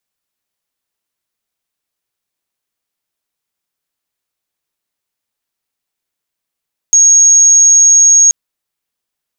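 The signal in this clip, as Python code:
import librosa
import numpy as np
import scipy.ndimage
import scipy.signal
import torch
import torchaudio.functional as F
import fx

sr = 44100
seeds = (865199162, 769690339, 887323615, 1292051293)

y = 10.0 ** (-3.5 / 20.0) * np.sin(2.0 * np.pi * (6570.0 * (np.arange(round(1.38 * sr)) / sr)))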